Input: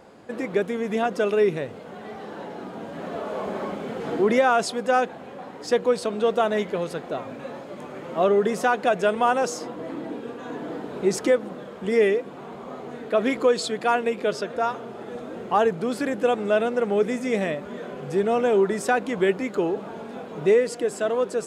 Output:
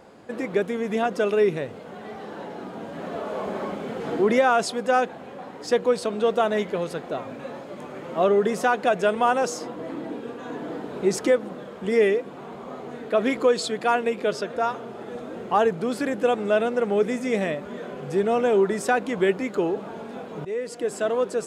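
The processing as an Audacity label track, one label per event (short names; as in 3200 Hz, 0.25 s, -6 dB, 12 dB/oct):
20.450000	20.950000	fade in linear, from -19.5 dB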